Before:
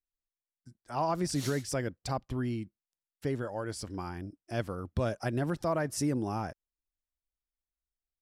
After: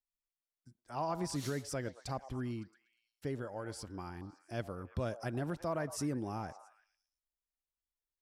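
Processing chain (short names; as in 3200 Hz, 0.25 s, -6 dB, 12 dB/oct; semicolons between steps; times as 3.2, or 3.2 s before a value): delay with a stepping band-pass 0.112 s, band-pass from 700 Hz, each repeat 0.7 oct, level -11 dB; gain -6 dB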